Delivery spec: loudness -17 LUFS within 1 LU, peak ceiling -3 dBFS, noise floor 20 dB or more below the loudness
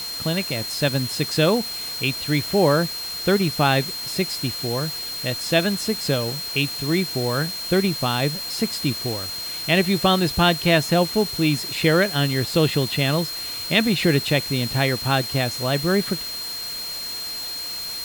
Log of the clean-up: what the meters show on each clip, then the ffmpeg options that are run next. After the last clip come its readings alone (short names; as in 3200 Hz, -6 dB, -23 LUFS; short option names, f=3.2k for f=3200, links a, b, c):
steady tone 4200 Hz; tone level -29 dBFS; noise floor -31 dBFS; noise floor target -42 dBFS; loudness -21.5 LUFS; peak -4.5 dBFS; loudness target -17.0 LUFS
-> -af "bandreject=f=4.2k:w=30"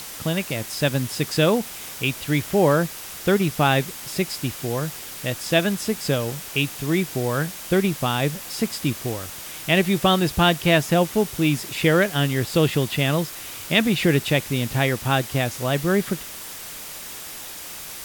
steady tone none; noise floor -36 dBFS; noise floor target -42 dBFS
-> -af "afftdn=nr=6:nf=-36"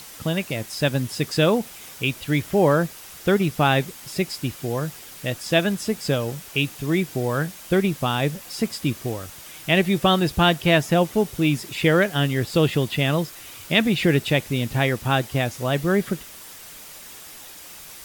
noise floor -42 dBFS; noise floor target -43 dBFS
-> -af "afftdn=nr=6:nf=-42"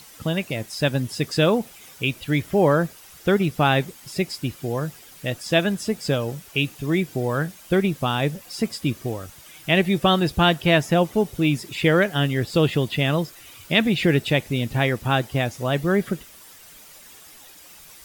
noise floor -47 dBFS; loudness -22.5 LUFS; peak -5.0 dBFS; loudness target -17.0 LUFS
-> -af "volume=5.5dB,alimiter=limit=-3dB:level=0:latency=1"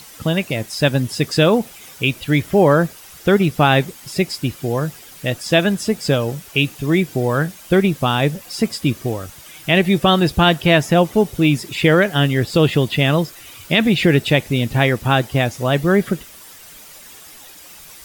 loudness -17.5 LUFS; peak -3.0 dBFS; noise floor -41 dBFS